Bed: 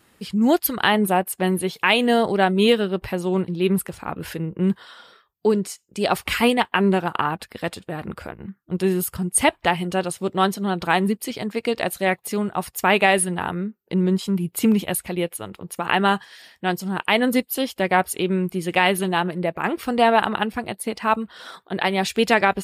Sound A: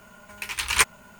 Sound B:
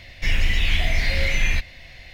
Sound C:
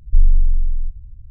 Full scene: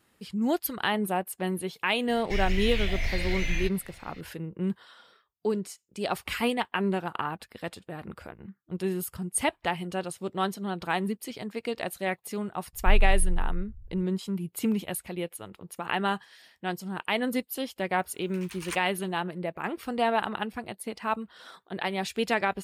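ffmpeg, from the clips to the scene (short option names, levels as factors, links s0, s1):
-filter_complex "[0:a]volume=0.355[s0];[1:a]agate=range=0.0224:threshold=0.00398:ratio=3:release=100:detection=peak[s1];[2:a]atrim=end=2.13,asetpts=PTS-STARTPTS,volume=0.376,afade=t=in:d=0.004:c=hsin,afade=t=out:st=2.126:d=0.004:c=hsin,adelay=2080[s2];[3:a]atrim=end=1.3,asetpts=PTS-STARTPTS,volume=0.355,afade=t=in:d=0.004:c=hsin,afade=t=out:st=1.296:d=0.004:c=hsin,adelay=12730[s3];[s1]atrim=end=1.19,asetpts=PTS-STARTPTS,volume=0.133,afade=t=in:d=0.004:c=hsin,afade=t=out:st=1.186:d=0.004:c=hsin,adelay=17920[s4];[s0][s2][s3][s4]amix=inputs=4:normalize=0"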